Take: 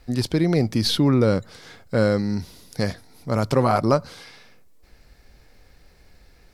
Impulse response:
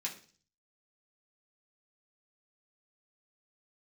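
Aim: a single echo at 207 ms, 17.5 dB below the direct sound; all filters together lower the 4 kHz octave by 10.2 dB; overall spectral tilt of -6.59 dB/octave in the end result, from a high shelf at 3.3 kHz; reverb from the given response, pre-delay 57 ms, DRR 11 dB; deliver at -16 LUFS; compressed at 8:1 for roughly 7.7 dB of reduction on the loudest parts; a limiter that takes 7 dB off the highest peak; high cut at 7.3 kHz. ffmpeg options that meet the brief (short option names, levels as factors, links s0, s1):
-filter_complex "[0:a]lowpass=7300,highshelf=f=3300:g=-5,equalizer=f=4000:t=o:g=-8,acompressor=threshold=0.0794:ratio=8,alimiter=limit=0.0944:level=0:latency=1,aecho=1:1:207:0.133,asplit=2[s0][s1];[1:a]atrim=start_sample=2205,adelay=57[s2];[s1][s2]afir=irnorm=-1:irlink=0,volume=0.251[s3];[s0][s3]amix=inputs=2:normalize=0,volume=5.62"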